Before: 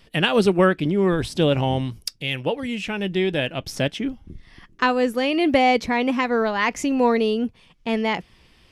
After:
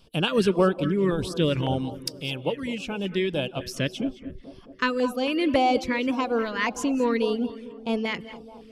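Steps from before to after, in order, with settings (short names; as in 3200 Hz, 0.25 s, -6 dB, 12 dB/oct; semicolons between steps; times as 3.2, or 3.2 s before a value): non-linear reverb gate 0.24 s rising, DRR 12 dB; reverb removal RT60 0.5 s; on a send: tape echo 0.219 s, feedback 79%, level -15.5 dB, low-pass 1400 Hz; on the sum: LFO notch square 1.8 Hz 770–1900 Hz; gain -2.5 dB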